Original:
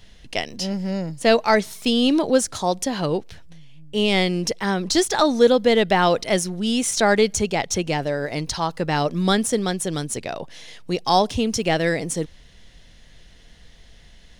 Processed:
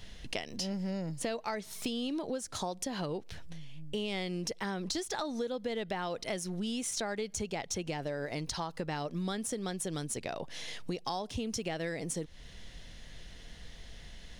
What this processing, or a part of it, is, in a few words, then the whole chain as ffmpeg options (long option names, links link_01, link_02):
serial compression, leveller first: -af "acompressor=threshold=-23dB:ratio=2,acompressor=threshold=-35dB:ratio=4"